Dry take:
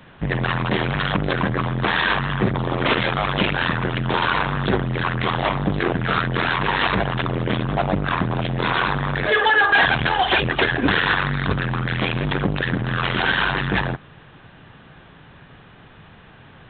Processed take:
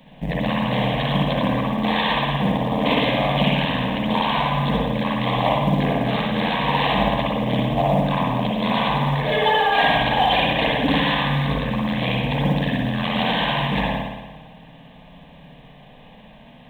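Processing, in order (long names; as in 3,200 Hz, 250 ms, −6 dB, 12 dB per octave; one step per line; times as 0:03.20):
phaser with its sweep stopped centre 370 Hz, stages 6
dynamic equaliser 1,100 Hz, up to +4 dB, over −41 dBFS, Q 4.8
spring reverb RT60 1.2 s, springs 56 ms, chirp 50 ms, DRR −3 dB
log-companded quantiser 8 bits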